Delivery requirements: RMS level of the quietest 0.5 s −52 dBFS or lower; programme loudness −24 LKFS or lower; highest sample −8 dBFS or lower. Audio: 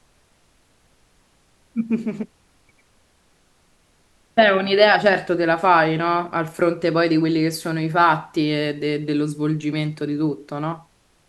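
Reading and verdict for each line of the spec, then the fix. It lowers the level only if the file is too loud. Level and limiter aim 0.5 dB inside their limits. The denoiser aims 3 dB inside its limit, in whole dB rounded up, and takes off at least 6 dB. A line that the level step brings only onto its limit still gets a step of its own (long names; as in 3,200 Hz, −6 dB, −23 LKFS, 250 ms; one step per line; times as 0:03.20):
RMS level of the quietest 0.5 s −60 dBFS: in spec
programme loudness −20.0 LKFS: out of spec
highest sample −2.5 dBFS: out of spec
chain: level −4.5 dB
brickwall limiter −8.5 dBFS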